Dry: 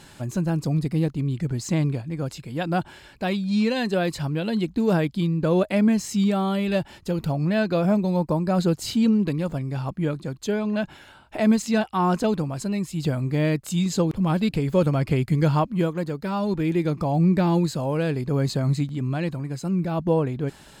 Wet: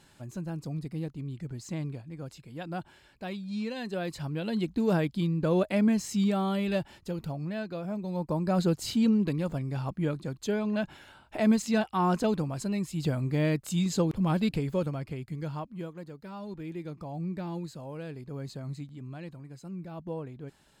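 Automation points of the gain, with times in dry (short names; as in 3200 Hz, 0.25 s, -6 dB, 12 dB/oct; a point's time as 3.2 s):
3.75 s -12 dB
4.64 s -5 dB
6.67 s -5 dB
7.87 s -15 dB
8.46 s -4.5 dB
14.51 s -4.5 dB
15.15 s -15.5 dB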